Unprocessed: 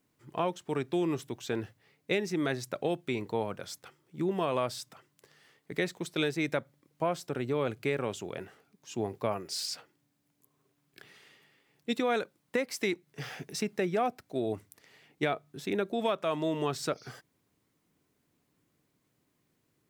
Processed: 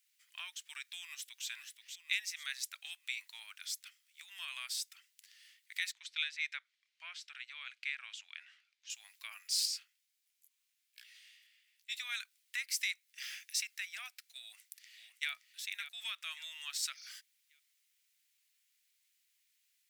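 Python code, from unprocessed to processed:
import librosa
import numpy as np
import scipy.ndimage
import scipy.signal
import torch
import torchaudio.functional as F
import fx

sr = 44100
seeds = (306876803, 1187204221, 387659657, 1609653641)

y = fx.echo_throw(x, sr, start_s=0.94, length_s=0.53, ms=480, feedback_pct=45, wet_db=-7.5)
y = fx.lowpass(y, sr, hz=3900.0, slope=12, at=(5.92, 8.9))
y = fx.detune_double(y, sr, cents=fx.line((9.65, 51.0), (11.99, 34.0)), at=(9.65, 11.99), fade=0.02)
y = fx.echo_throw(y, sr, start_s=14.4, length_s=0.91, ms=570, feedback_pct=35, wet_db=-9.5)
y = scipy.signal.sosfilt(scipy.signal.cheby2(4, 80, 370.0, 'highpass', fs=sr, output='sos'), y)
y = fx.dynamic_eq(y, sr, hz=3200.0, q=0.93, threshold_db=-51.0, ratio=4.0, max_db=-3)
y = F.gain(torch.from_numpy(y), 4.5).numpy()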